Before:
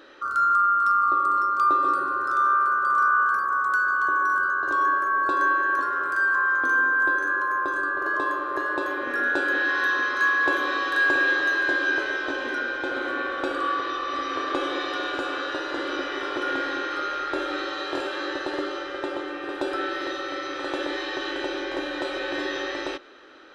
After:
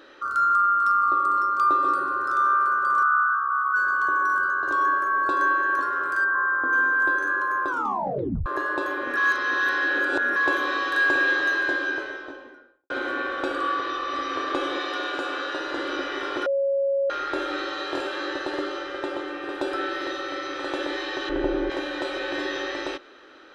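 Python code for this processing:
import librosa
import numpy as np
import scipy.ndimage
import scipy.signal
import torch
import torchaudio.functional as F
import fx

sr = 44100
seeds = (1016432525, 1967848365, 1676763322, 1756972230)

y = fx.envelope_sharpen(x, sr, power=2.0, at=(3.02, 3.75), fade=0.02)
y = fx.savgol(y, sr, points=41, at=(6.24, 6.73))
y = fx.studio_fade_out(y, sr, start_s=11.49, length_s=1.41)
y = fx.highpass(y, sr, hz=200.0, slope=6, at=(14.77, 15.61))
y = fx.tilt_eq(y, sr, slope=-4.5, at=(21.29, 21.7))
y = fx.edit(y, sr, fx.tape_stop(start_s=7.68, length_s=0.78),
    fx.reverse_span(start_s=9.17, length_s=1.19),
    fx.bleep(start_s=16.46, length_s=0.64, hz=552.0, db=-20.0), tone=tone)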